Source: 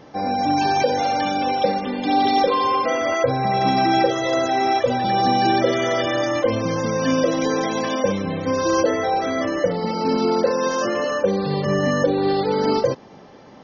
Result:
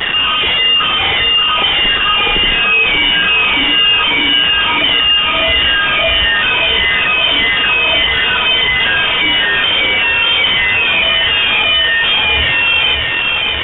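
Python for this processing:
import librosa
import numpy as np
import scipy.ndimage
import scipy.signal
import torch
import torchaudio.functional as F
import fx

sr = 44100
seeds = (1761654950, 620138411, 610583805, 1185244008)

p1 = fx.spec_ripple(x, sr, per_octave=0.81, drift_hz=1.6, depth_db=24)
p2 = scipy.signal.sosfilt(scipy.signal.butter(2, 1100.0, 'highpass', fs=sr, output='sos'), p1)
p3 = fx.high_shelf(p2, sr, hz=2700.0, db=-10.5)
p4 = fx.rider(p3, sr, range_db=10, speed_s=0.5)
p5 = p3 + (p4 * librosa.db_to_amplitude(-1.0))
p6 = fx.quant_companded(p5, sr, bits=2)
p7 = fx.fold_sine(p6, sr, drive_db=5, ceiling_db=0.0)
p8 = p7 + fx.echo_feedback(p7, sr, ms=584, feedback_pct=57, wet_db=-7, dry=0)
p9 = fx.freq_invert(p8, sr, carrier_hz=3600)
y = fx.env_flatten(p9, sr, amount_pct=50)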